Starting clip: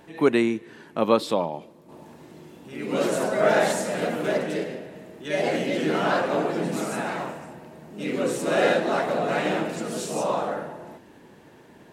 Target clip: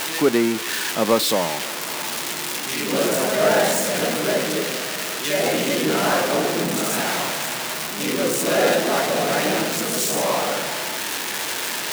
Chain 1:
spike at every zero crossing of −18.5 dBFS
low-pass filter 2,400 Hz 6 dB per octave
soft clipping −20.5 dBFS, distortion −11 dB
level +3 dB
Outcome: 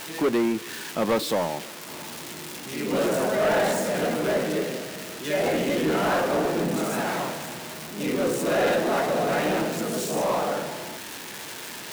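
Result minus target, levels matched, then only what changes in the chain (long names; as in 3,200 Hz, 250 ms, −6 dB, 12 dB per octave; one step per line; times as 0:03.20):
soft clipping: distortion +15 dB; spike at every zero crossing: distortion −11 dB
change: spike at every zero crossing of −7 dBFS
change: soft clipping −9 dBFS, distortion −26 dB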